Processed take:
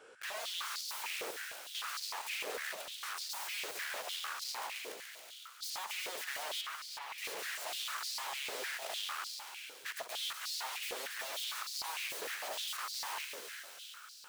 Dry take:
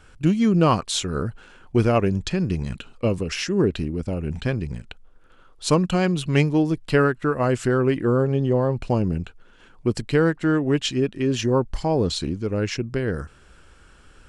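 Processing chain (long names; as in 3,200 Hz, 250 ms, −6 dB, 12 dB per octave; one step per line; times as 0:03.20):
0:12.25–0:12.92: comb filter 4 ms, depth 49%
brickwall limiter −16 dBFS, peak gain reduction 11.5 dB
wrap-around overflow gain 32 dB
delay with a high-pass on its return 139 ms, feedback 71%, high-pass 3,200 Hz, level −6 dB
soft clipping −34 dBFS, distortion −16 dB
0:06.61–0:07.18: high-frequency loss of the air 260 metres
echo with a time of its own for lows and highs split 2,000 Hz, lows 152 ms, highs 373 ms, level −7 dB
high-pass on a step sequencer 6.6 Hz 460–4,600 Hz
level −5.5 dB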